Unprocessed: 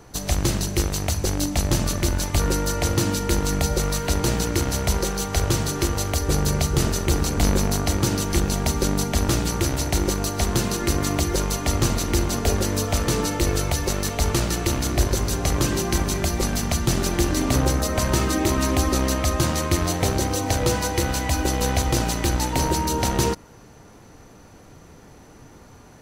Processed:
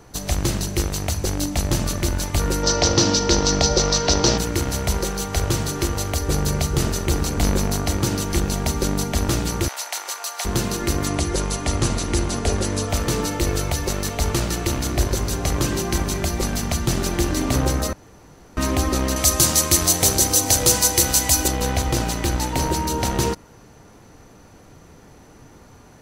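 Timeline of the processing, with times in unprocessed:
2.63–4.38 s: FFT filter 110 Hz 0 dB, 620 Hz +7 dB, 2.3 kHz +2 dB, 5.6 kHz +14 dB, 10 kHz -18 dB
9.68–10.45 s: high-pass 750 Hz 24 dB/octave
11.07–12.90 s: careless resampling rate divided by 2×, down none, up filtered
17.93–18.57 s: room tone
19.16–21.48 s: tone controls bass -2 dB, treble +15 dB

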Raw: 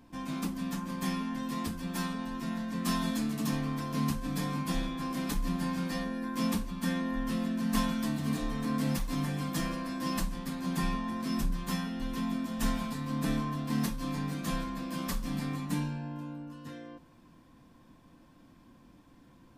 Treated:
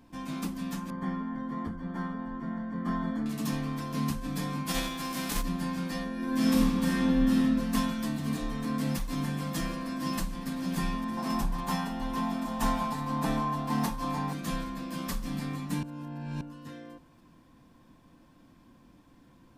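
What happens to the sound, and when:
0.90–3.26 s: Savitzky-Golay filter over 41 samples
4.67–5.41 s: formants flattened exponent 0.6
6.13–7.36 s: reverb throw, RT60 1.9 s, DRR -4.5 dB
8.58–9.13 s: echo throw 590 ms, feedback 60%, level -9.5 dB
9.79–10.48 s: echo throw 560 ms, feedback 80%, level -10.5 dB
11.17–14.33 s: peaking EQ 860 Hz +13.5 dB 0.79 oct
15.83–16.41 s: reverse

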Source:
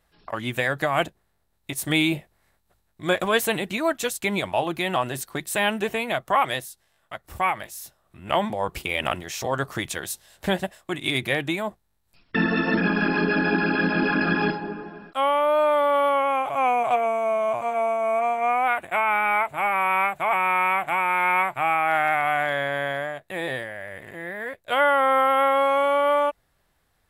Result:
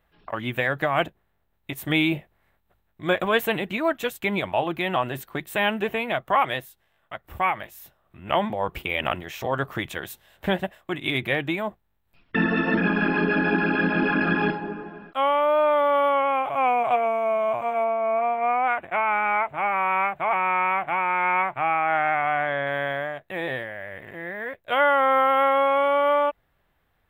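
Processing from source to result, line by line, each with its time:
17.84–22.67 s: treble shelf 4.1 kHz -11 dB
whole clip: high-order bell 7 kHz -12.5 dB

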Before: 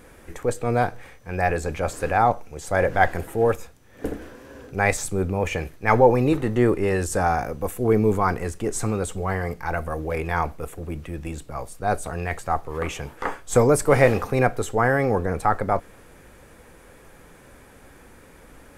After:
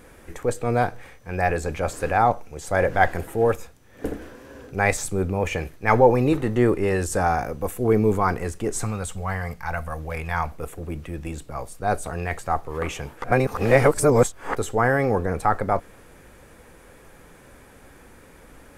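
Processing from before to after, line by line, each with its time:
8.84–10.52 s: peaking EQ 360 Hz -12.5 dB 1 oct
13.24–14.55 s: reverse

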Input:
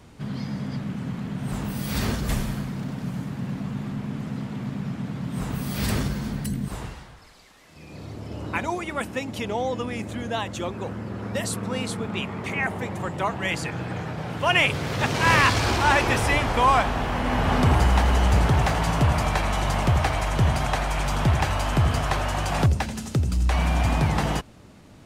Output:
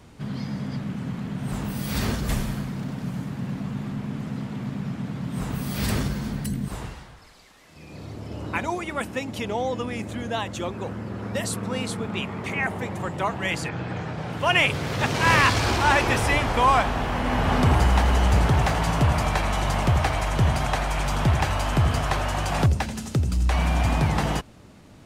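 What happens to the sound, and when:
13.68–14.31 s: low-pass 4.7 kHz -> 11 kHz

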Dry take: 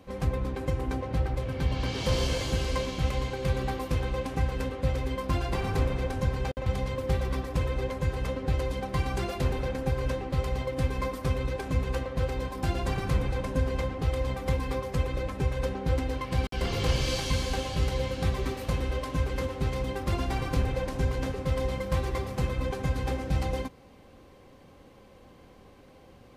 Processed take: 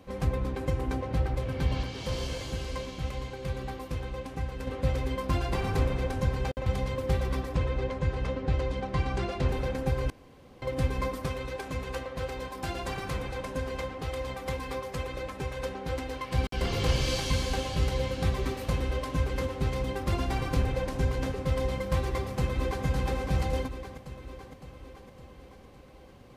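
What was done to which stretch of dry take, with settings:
1.83–4.67 s: gain -6 dB
7.55–9.49 s: distance through air 76 m
10.10–10.62 s: room tone
11.26–16.34 s: bass shelf 300 Hz -9.5 dB
21.99–22.85 s: echo throw 560 ms, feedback 60%, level -5.5 dB

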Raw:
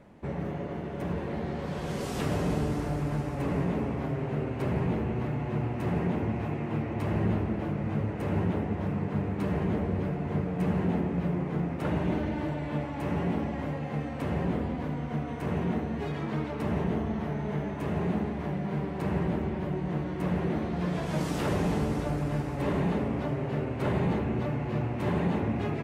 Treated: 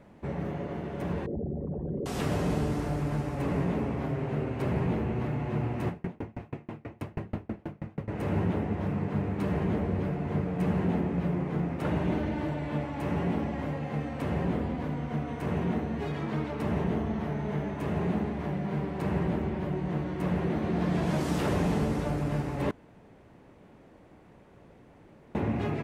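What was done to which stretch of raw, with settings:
1.26–2.06 s: resonances exaggerated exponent 3
5.88–8.08 s: sawtooth tremolo in dB decaying 6.2 Hz, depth 35 dB
20.38–20.88 s: echo throw 250 ms, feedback 75%, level -4.5 dB
22.71–25.35 s: room tone

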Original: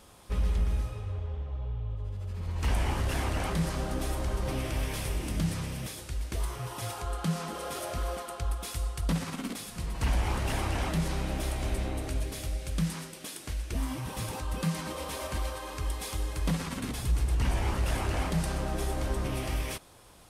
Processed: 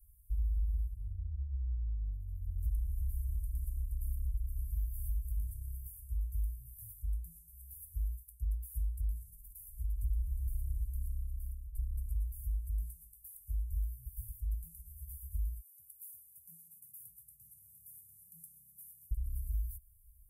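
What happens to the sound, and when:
10.86–11.75 s: fade out, to -18.5 dB
15.60–19.11 s: steep high-pass 160 Hz
whole clip: inverse Chebyshev band-stop 270–4000 Hz, stop band 70 dB; compression 3:1, threshold -35 dBFS; trim +3 dB

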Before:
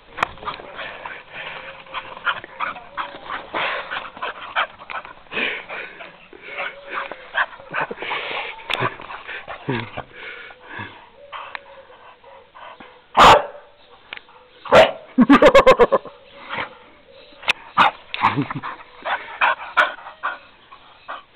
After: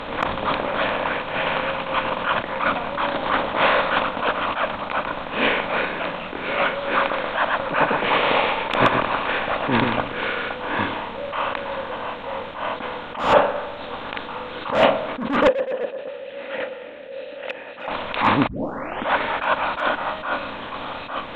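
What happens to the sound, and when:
6.97–10.08 s: delay 126 ms -8.5 dB
15.47–17.88 s: vowel filter e
18.47 s: tape start 0.64 s
whole clip: spectral levelling over time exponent 0.6; low-pass 3.9 kHz 6 dB/octave; attacks held to a fixed rise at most 100 dB/s; trim -1 dB

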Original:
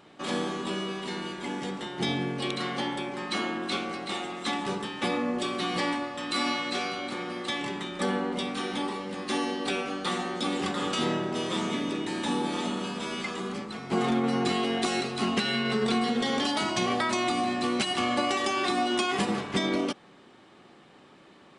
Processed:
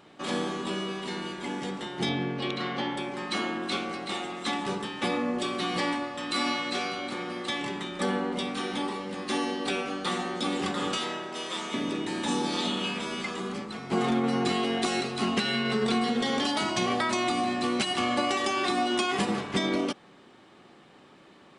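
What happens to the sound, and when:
2.09–2.97 s: low-pass 4.5 kHz
10.97–11.74 s: high-pass 850 Hz 6 dB/octave
12.27–13.00 s: peaking EQ 7.3 kHz -> 2.2 kHz +10 dB

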